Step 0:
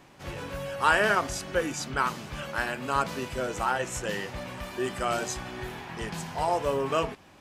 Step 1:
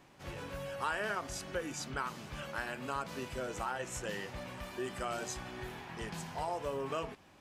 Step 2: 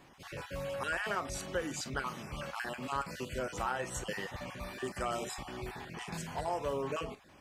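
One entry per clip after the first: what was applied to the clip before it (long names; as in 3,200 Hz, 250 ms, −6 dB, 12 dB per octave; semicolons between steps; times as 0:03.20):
downward compressor 2.5 to 1, threshold −28 dBFS, peak gain reduction 7.5 dB; level −6.5 dB
time-frequency cells dropped at random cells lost 23%; convolution reverb, pre-delay 25 ms, DRR 13 dB; level +2.5 dB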